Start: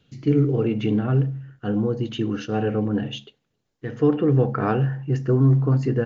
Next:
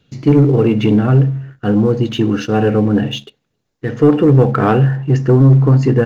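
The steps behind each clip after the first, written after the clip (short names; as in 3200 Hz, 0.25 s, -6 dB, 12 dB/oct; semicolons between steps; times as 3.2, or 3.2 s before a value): notch 3100 Hz, Q 22; sample leveller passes 1; gain +6.5 dB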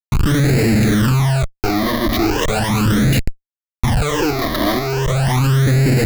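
Schmitt trigger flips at -24.5 dBFS; phaser stages 12, 0.38 Hz, lowest notch 140–1100 Hz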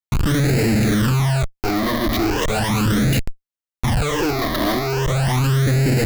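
soft clip -13.5 dBFS, distortion -18 dB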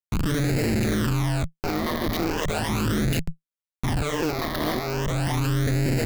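AM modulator 160 Hz, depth 70%; gain -2.5 dB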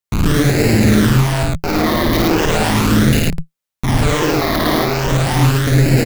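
loudspeakers at several distances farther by 18 m -2 dB, 37 m -1 dB; gain +7 dB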